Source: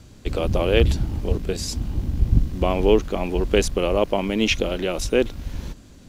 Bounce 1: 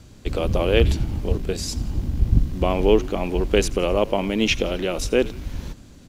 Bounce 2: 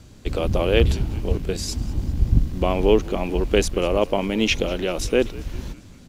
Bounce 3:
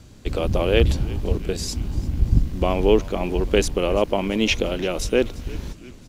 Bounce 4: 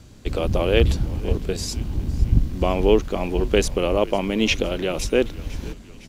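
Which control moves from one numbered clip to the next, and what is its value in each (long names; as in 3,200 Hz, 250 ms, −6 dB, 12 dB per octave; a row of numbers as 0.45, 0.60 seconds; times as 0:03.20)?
echo with shifted repeats, delay time: 86, 196, 341, 507 milliseconds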